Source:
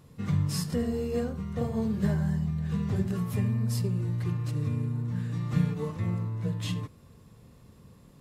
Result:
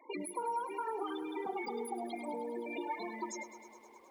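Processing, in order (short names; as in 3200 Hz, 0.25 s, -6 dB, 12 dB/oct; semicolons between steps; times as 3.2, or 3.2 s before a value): HPF 420 Hz 12 dB/oct; compressor 10:1, threshold -41 dBFS, peak gain reduction 12 dB; loudest bins only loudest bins 8; speed mistake 7.5 ips tape played at 15 ips; lo-fi delay 0.104 s, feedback 80%, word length 12-bit, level -14 dB; gain +8 dB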